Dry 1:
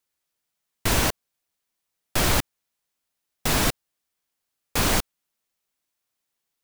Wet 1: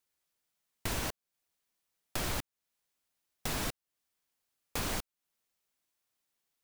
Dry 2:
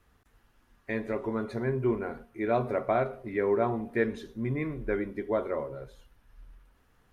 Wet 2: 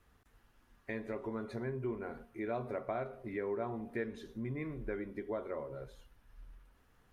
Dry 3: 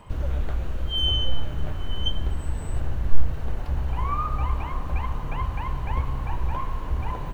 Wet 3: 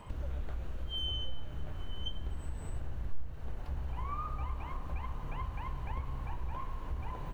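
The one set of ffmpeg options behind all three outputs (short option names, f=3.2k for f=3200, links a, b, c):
-af "acompressor=threshold=-38dB:ratio=2,volume=-2.5dB"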